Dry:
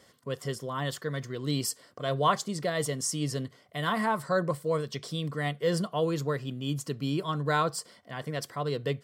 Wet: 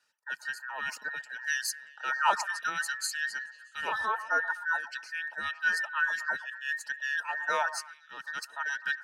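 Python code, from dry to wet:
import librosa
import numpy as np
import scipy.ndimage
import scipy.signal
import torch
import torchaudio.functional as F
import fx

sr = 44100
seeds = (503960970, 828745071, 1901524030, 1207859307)

y = fx.band_invert(x, sr, width_hz=2000)
y = fx.weighting(y, sr, curve='A')
y = fx.dereverb_blind(y, sr, rt60_s=0.62)
y = fx.high_shelf(y, sr, hz=8500.0, db=-7.0, at=(3.06, 5.72))
y = fx.echo_stepped(y, sr, ms=126, hz=900.0, octaves=0.7, feedback_pct=70, wet_db=-11.0)
y = fx.band_widen(y, sr, depth_pct=40)
y = F.gain(torch.from_numpy(y), -2.5).numpy()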